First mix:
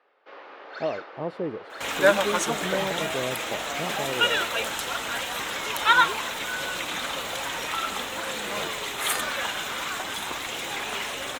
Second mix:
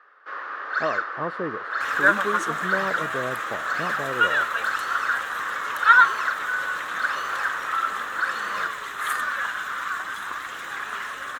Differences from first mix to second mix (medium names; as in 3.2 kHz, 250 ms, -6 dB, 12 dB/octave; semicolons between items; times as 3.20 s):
first sound: remove distance through air 110 m; second sound -9.0 dB; master: add high-order bell 1.4 kHz +15 dB 1 oct